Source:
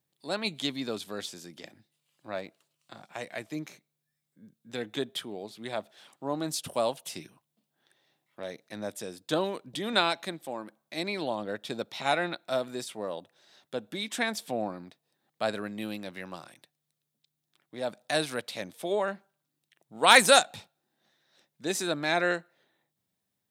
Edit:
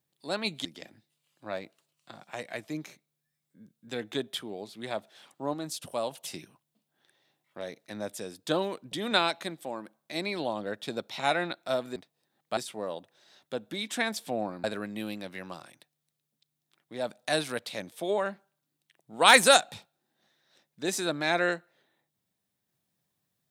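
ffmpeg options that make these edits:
-filter_complex "[0:a]asplit=7[a][b][c][d][e][f][g];[a]atrim=end=0.652[h];[b]atrim=start=1.468:end=6.362[i];[c]atrim=start=6.358:end=6.932,asetpts=PTS-STARTPTS,volume=-4dB[j];[d]atrim=start=6.928:end=12.782[k];[e]atrim=start=14.848:end=15.462[l];[f]atrim=start=12.778:end=14.852[m];[g]atrim=start=15.458[n];[h][i]acrossfade=d=0.004:c1=hsin:c2=hsin[o];[o][j]acrossfade=d=0.004:c1=hsin:c2=hsin[p];[p][k]acrossfade=d=0.004:c1=hsin:c2=hsin[q];[q][l]acrossfade=d=0.004:c1=hsin:c2=hsin[r];[r][m]acrossfade=d=0.004:c1=hsin:c2=hsin[s];[s][n]acrossfade=d=0.004:c1=hsin:c2=hsin"

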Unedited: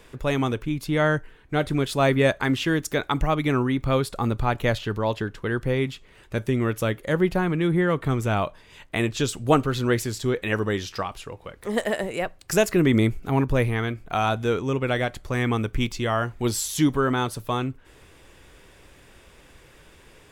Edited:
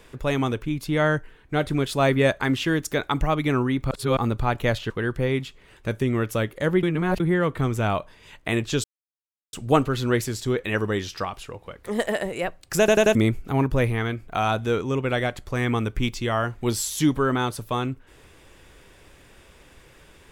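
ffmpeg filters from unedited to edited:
-filter_complex "[0:a]asplit=11[a][b][c][d][e][f][g][h][i][j][k];[a]atrim=end=3.912[l];[b]atrim=start=3.908:end=4.172,asetpts=PTS-STARTPTS,areverse[m];[c]atrim=start=4.168:end=4.902[n];[d]atrim=start=5.368:end=7.302[o];[e]atrim=start=7.298:end=7.672,asetpts=PTS-STARTPTS,areverse[p];[f]atrim=start=7.668:end=9.31,asetpts=PTS-STARTPTS,afade=t=out:st=1.638:d=0.004:c=hsin,apad=pad_dur=0.69[q];[g]atrim=start=9.31:end=12.662,asetpts=PTS-STARTPTS,afade=t=in:d=0.004:c=hsin[r];[h]atrim=start=12.568:end=12.662[s];[i]atrim=start=12.568:end=12.662[t];[j]atrim=start=12.568:end=12.662[u];[k]atrim=start=12.928[v];[l][m]acrossfade=d=0.004:c1=hsin:c2=hsin[w];[w][n]acrossfade=d=0.004:c1=hsin:c2=hsin[x];[x][o]acrossfade=d=0.004:c1=hsin:c2=hsin[y];[y][p]acrossfade=d=0.004:c1=hsin:c2=hsin[z];[q][r]concat=n=2:v=0:a=1[aa];[z][aa]acrossfade=d=0.004:c1=hsin:c2=hsin[ab];[ab][s]acrossfade=d=0.004:c1=hsin:c2=hsin[ac];[ac][t]acrossfade=d=0.004:c1=hsin:c2=hsin[ad];[ad][u]acrossfade=d=0.004:c1=hsin:c2=hsin[ae];[ae][v]acrossfade=d=0.004:c1=hsin:c2=hsin"

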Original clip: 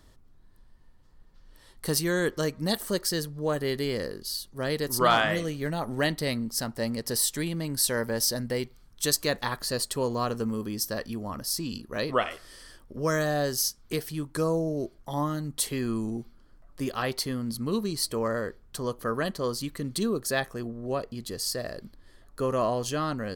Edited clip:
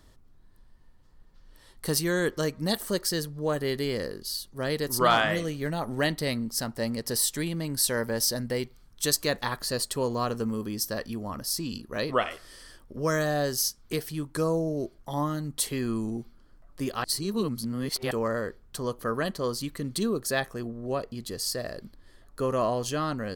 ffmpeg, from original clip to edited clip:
-filter_complex "[0:a]asplit=3[a][b][c];[a]atrim=end=17.042[d];[b]atrim=start=17.038:end=18.112,asetpts=PTS-STARTPTS,areverse[e];[c]atrim=start=18.108[f];[d][e]acrossfade=d=0.004:c1=hsin:c2=hsin[g];[g][f]acrossfade=d=0.004:c1=hsin:c2=hsin"

